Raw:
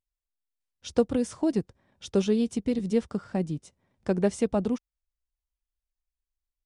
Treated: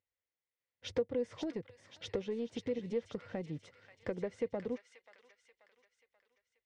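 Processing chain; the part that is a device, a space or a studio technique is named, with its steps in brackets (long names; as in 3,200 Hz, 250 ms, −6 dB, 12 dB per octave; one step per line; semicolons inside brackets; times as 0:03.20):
AM radio (band-pass filter 120–3,500 Hz; downward compressor 6 to 1, threshold −36 dBFS, peak gain reduction 18 dB; soft clipping −28.5 dBFS, distortion −19 dB)
thirty-one-band graphic EQ 100 Hz +12 dB, 200 Hz −4 dB, 500 Hz +11 dB, 1,250 Hz −4 dB, 2,000 Hz +10 dB
delay with a high-pass on its return 534 ms, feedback 46%, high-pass 1,800 Hz, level −5 dB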